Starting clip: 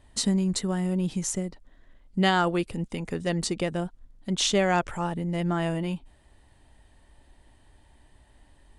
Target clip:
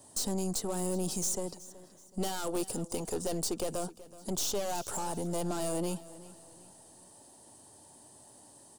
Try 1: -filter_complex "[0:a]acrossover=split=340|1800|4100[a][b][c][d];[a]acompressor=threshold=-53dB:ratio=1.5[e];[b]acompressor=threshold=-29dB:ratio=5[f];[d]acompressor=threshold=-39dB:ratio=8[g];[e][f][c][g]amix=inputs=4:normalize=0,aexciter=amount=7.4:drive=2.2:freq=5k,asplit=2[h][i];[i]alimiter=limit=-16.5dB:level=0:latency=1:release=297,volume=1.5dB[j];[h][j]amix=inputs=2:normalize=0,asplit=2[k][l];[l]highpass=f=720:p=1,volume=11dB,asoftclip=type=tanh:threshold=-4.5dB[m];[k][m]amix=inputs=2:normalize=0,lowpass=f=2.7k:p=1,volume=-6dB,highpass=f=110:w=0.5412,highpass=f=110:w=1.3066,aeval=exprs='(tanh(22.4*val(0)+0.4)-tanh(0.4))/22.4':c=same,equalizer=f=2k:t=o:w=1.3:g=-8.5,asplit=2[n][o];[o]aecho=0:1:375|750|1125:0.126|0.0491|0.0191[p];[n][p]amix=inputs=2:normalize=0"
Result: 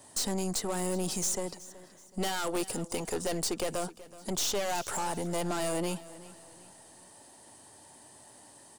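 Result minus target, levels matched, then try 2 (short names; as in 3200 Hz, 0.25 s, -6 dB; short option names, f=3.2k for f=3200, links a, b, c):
2000 Hz band +7.0 dB
-filter_complex "[0:a]acrossover=split=340|1800|4100[a][b][c][d];[a]acompressor=threshold=-53dB:ratio=1.5[e];[b]acompressor=threshold=-29dB:ratio=5[f];[d]acompressor=threshold=-39dB:ratio=8[g];[e][f][c][g]amix=inputs=4:normalize=0,aexciter=amount=7.4:drive=2.2:freq=5k,asplit=2[h][i];[i]alimiter=limit=-16.5dB:level=0:latency=1:release=297,volume=1.5dB[j];[h][j]amix=inputs=2:normalize=0,asplit=2[k][l];[l]highpass=f=720:p=1,volume=11dB,asoftclip=type=tanh:threshold=-4.5dB[m];[k][m]amix=inputs=2:normalize=0,lowpass=f=2.7k:p=1,volume=-6dB,highpass=f=110:w=0.5412,highpass=f=110:w=1.3066,aeval=exprs='(tanh(22.4*val(0)+0.4)-tanh(0.4))/22.4':c=same,equalizer=f=2k:t=o:w=1.3:g=-20,asplit=2[n][o];[o]aecho=0:1:375|750|1125:0.126|0.0491|0.0191[p];[n][p]amix=inputs=2:normalize=0"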